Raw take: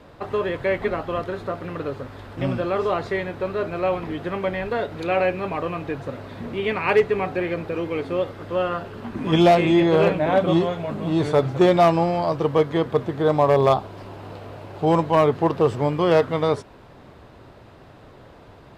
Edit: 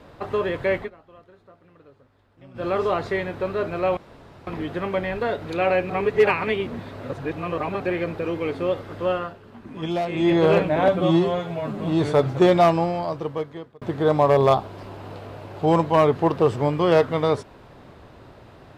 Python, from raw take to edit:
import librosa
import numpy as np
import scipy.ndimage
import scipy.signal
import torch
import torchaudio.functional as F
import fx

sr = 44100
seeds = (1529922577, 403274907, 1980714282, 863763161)

y = fx.edit(x, sr, fx.fade_down_up(start_s=0.77, length_s=1.9, db=-23.0, fade_s=0.13),
    fx.insert_room_tone(at_s=3.97, length_s=0.5),
    fx.reverse_span(start_s=5.4, length_s=1.9),
    fx.fade_down_up(start_s=8.6, length_s=1.26, db=-10.5, fade_s=0.27),
    fx.stretch_span(start_s=10.38, length_s=0.61, factor=1.5),
    fx.fade_out_span(start_s=11.76, length_s=1.25), tone=tone)